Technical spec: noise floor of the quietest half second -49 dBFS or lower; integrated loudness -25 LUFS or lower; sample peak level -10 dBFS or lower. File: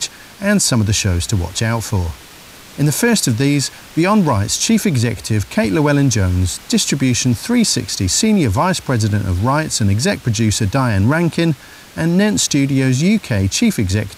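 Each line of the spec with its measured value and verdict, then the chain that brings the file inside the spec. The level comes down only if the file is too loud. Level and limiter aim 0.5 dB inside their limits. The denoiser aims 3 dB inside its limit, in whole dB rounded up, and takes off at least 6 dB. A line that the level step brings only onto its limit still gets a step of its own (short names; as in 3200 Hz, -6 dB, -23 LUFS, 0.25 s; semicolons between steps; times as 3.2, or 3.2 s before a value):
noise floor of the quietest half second -39 dBFS: fail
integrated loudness -16.0 LUFS: fail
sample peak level -5.0 dBFS: fail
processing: denoiser 6 dB, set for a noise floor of -39 dBFS; gain -9.5 dB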